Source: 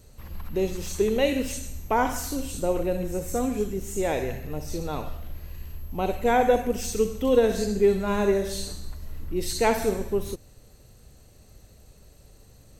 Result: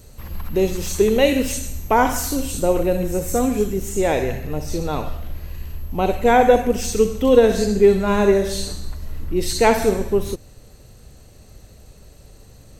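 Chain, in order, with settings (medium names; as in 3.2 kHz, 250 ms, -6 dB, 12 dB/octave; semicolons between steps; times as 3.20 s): treble shelf 9.8 kHz +3 dB, from 3.89 s -4.5 dB; trim +7 dB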